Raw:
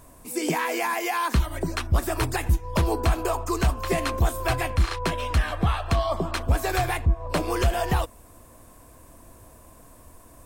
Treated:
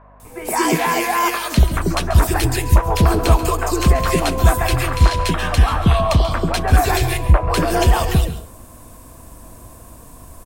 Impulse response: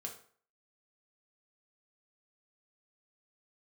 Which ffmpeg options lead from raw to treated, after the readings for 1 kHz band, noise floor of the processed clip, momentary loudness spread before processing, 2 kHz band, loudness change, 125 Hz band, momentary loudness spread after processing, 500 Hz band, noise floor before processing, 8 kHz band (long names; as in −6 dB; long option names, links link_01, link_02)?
+8.0 dB, −42 dBFS, 3 LU, +6.5 dB, +8.5 dB, +9.5 dB, 4 LU, +7.0 dB, −51 dBFS, +9.0 dB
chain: -filter_complex "[0:a]acrossover=split=490|1900[link_01][link_02][link_03];[link_03]adelay=200[link_04];[link_01]adelay=230[link_05];[link_05][link_02][link_04]amix=inputs=3:normalize=0,aeval=exprs='val(0)+0.00158*(sin(2*PI*50*n/s)+sin(2*PI*2*50*n/s)/2+sin(2*PI*3*50*n/s)/3+sin(2*PI*4*50*n/s)/4+sin(2*PI*5*50*n/s)/5)':channel_layout=same,asplit=2[link_06][link_07];[1:a]atrim=start_sample=2205,adelay=136[link_08];[link_07][link_08]afir=irnorm=-1:irlink=0,volume=-9dB[link_09];[link_06][link_09]amix=inputs=2:normalize=0,volume=9dB"